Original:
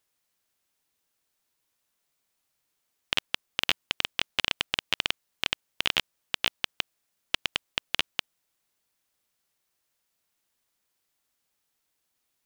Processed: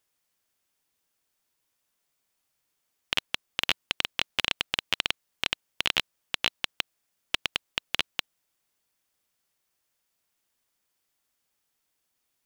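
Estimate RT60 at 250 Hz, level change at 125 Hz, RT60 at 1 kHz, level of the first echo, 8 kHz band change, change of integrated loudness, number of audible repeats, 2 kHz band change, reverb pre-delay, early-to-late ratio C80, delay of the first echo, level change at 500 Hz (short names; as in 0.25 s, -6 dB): none, 0.0 dB, none, none, 0.0 dB, 0.0 dB, none, 0.0 dB, none, none, none, 0.0 dB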